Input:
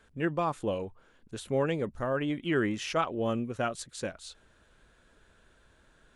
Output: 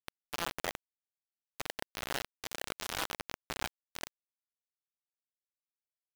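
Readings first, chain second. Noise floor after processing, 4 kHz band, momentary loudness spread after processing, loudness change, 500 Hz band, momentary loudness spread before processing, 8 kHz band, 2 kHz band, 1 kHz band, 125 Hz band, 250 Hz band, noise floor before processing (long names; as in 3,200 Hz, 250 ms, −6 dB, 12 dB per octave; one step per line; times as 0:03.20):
below −85 dBFS, +1.0 dB, 8 LU, −8.5 dB, −15.5 dB, 14 LU, +1.5 dB, −4.0 dB, −8.0 dB, −17.5 dB, −19.0 dB, −64 dBFS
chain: peak hold with a rise ahead of every peak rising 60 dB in 0.83 s
in parallel at +2 dB: brickwall limiter −21.5 dBFS, peak gain reduction 7.5 dB
on the sum: volume swells 533 ms
downward compressor 6 to 1, threshold −31 dBFS, peak gain reduction 13.5 dB
mains hum 60 Hz, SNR 19 dB
single-sideband voice off tune +160 Hz 200–3,600 Hz
dense smooth reverb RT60 0.65 s, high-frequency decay 0.8×, DRR −0.5 dB
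bit reduction 4 bits
level −4.5 dB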